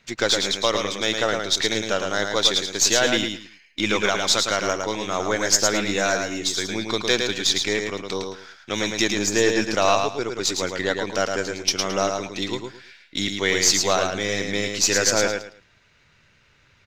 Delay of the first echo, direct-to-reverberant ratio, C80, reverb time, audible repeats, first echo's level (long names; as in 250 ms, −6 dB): 109 ms, no reverb audible, no reverb audible, no reverb audible, 3, −5.0 dB